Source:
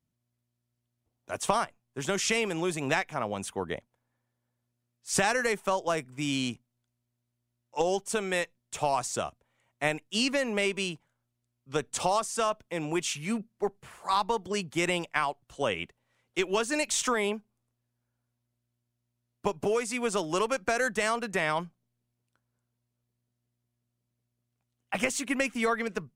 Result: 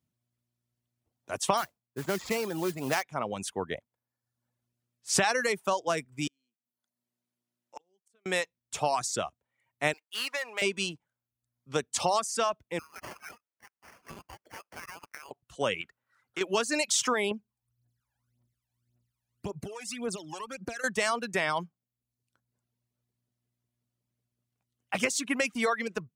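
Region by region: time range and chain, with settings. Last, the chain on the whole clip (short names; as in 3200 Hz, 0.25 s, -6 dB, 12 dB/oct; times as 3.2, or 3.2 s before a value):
1.57–3.03 median filter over 15 samples + modulation noise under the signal 14 dB
6.27–8.26 HPF 170 Hz 24 dB/oct + flipped gate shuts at -30 dBFS, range -40 dB
9.93–10.62 median filter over 9 samples + HPF 900 Hz
12.79–15.31 inverse Chebyshev high-pass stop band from 520 Hz, stop band 60 dB + compressor 5:1, threshold -39 dBFS + sample-rate reducer 3800 Hz
15.81–16.41 bell 1400 Hz +14.5 dB 0.71 oct + compressor 3:1, threshold -33 dBFS
17.31–20.84 compressor 2.5:1, threshold -40 dBFS + phaser 1.8 Hz, delay 1.3 ms, feedback 71%
whole clip: HPF 57 Hz; reverb removal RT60 0.69 s; dynamic EQ 4900 Hz, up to +5 dB, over -46 dBFS, Q 1.3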